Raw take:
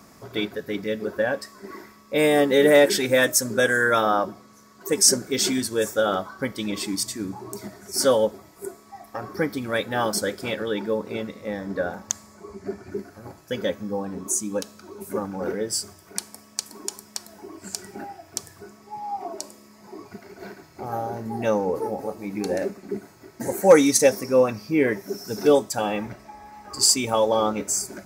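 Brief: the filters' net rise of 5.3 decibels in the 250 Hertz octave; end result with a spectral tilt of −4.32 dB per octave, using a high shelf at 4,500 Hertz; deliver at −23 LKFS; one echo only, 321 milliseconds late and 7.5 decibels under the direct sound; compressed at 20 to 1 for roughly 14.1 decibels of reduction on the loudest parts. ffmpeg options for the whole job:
ffmpeg -i in.wav -af "equalizer=frequency=250:width_type=o:gain=6.5,highshelf=frequency=4500:gain=-8,acompressor=threshold=-20dB:ratio=20,aecho=1:1:321:0.422,volume=4.5dB" out.wav

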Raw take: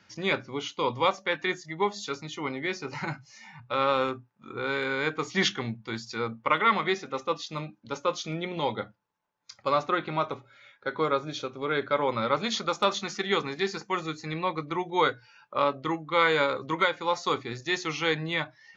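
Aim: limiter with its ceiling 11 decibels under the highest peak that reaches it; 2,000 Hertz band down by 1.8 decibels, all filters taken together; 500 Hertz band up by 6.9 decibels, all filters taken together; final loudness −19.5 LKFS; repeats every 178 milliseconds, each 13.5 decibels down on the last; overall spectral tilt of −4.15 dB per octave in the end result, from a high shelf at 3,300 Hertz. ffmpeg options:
ffmpeg -i in.wav -af "equalizer=frequency=500:width_type=o:gain=8,equalizer=frequency=2000:width_type=o:gain=-4.5,highshelf=frequency=3300:gain=5.5,alimiter=limit=-18.5dB:level=0:latency=1,aecho=1:1:178|356:0.211|0.0444,volume=10.5dB" out.wav

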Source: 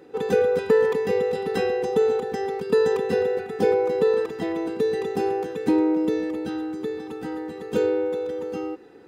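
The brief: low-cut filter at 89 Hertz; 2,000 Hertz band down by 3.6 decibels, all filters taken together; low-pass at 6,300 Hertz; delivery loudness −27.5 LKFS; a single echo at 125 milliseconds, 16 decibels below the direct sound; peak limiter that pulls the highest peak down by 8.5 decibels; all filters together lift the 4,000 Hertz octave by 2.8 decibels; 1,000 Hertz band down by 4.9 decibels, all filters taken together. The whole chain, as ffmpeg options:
ffmpeg -i in.wav -af "highpass=89,lowpass=6300,equalizer=frequency=1000:width_type=o:gain=-6.5,equalizer=frequency=2000:width_type=o:gain=-3.5,equalizer=frequency=4000:width_type=o:gain=5,alimiter=limit=-18dB:level=0:latency=1,aecho=1:1:125:0.158,volume=-0.5dB" out.wav

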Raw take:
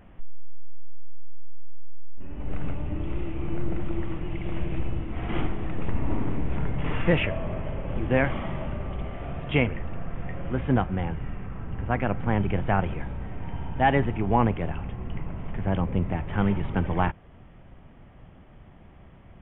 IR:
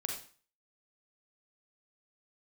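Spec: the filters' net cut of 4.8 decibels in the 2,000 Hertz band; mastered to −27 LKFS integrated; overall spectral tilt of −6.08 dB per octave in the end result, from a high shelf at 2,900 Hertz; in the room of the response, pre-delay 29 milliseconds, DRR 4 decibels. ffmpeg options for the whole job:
-filter_complex "[0:a]equalizer=frequency=2000:width_type=o:gain=-3.5,highshelf=frequency=2900:gain=-6.5,asplit=2[link_01][link_02];[1:a]atrim=start_sample=2205,adelay=29[link_03];[link_02][link_03]afir=irnorm=-1:irlink=0,volume=-5.5dB[link_04];[link_01][link_04]amix=inputs=2:normalize=0,volume=1dB"

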